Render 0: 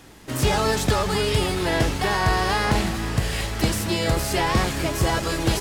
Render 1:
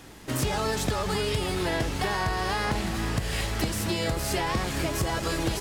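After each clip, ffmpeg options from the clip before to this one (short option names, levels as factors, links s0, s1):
-af "acompressor=threshold=0.0631:ratio=6"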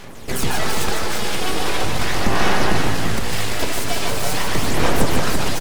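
-af "aphaser=in_gain=1:out_gain=1:delay=3:decay=0.61:speed=0.41:type=sinusoidal,aeval=exprs='abs(val(0))':c=same,aecho=1:1:150|339:0.562|0.562,volume=1.78"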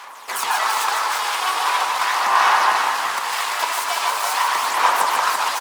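-af "highpass=f=1000:t=q:w=4"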